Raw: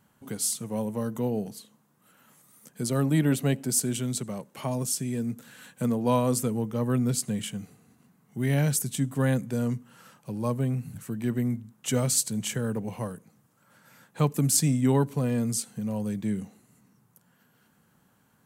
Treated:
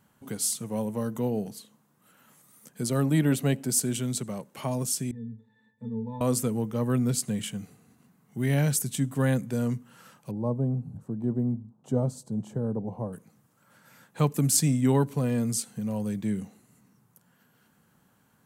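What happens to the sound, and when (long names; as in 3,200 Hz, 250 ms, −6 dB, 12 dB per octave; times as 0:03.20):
0:05.11–0:06.21: resonances in every octave A, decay 0.23 s
0:10.31–0:13.13: drawn EQ curve 850 Hz 0 dB, 2,200 Hz −27 dB, 3,700 Hz −21 dB, 8,300 Hz −22 dB, 13,000 Hz −26 dB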